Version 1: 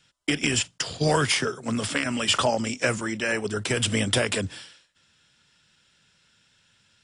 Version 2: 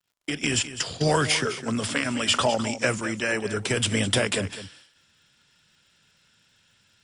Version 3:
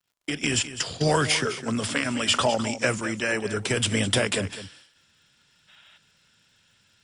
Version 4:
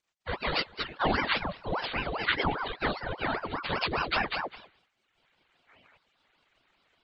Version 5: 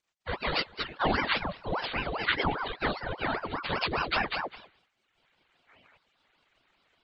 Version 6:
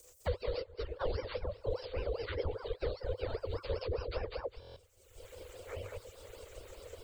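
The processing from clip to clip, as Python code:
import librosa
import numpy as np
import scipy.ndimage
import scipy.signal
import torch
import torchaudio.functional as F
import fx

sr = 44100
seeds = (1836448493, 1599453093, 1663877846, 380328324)

y1 = fx.fade_in_head(x, sr, length_s=0.55)
y1 = fx.dmg_crackle(y1, sr, seeds[0], per_s=100.0, level_db=-57.0)
y1 = y1 + 10.0 ** (-13.0 / 20.0) * np.pad(y1, (int(206 * sr / 1000.0), 0))[:len(y1)]
y2 = fx.spec_box(y1, sr, start_s=5.68, length_s=0.29, low_hz=570.0, high_hz=3900.0, gain_db=11)
y3 = fx.partial_stretch(y2, sr, pct=77)
y3 = fx.dereverb_blind(y3, sr, rt60_s=1.0)
y3 = fx.ring_lfo(y3, sr, carrier_hz=750.0, swing_pct=75, hz=5.0)
y4 = y3
y5 = fx.curve_eq(y4, sr, hz=(100.0, 140.0, 270.0, 500.0, 740.0, 1100.0, 1700.0, 3900.0, 7900.0), db=(0, -22, -21, 3, -20, -20, -24, -18, 2))
y5 = fx.buffer_glitch(y5, sr, at_s=(4.6,), block=1024, repeats=6)
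y5 = fx.band_squash(y5, sr, depth_pct=100)
y5 = y5 * librosa.db_to_amplitude(2.0)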